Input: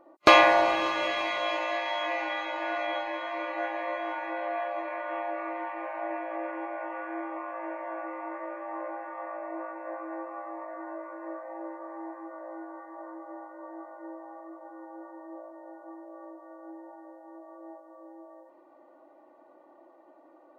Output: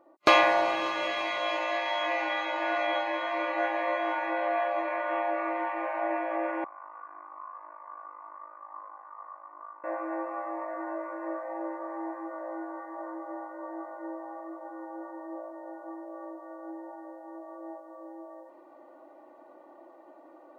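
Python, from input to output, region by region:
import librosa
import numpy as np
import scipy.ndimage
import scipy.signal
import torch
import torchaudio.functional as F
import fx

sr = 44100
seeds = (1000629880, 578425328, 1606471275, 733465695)

y = fx.chain(x, sr, fx.bandpass_q(hz=1100.0, q=8.3),
    fx.ring_mod(carrier_hz=26.0), at=(6.64, 9.84))
y = fx.highpass(y, sr, hz=100.0, slope=6)
y = fx.rider(y, sr, range_db=4, speed_s=2.0)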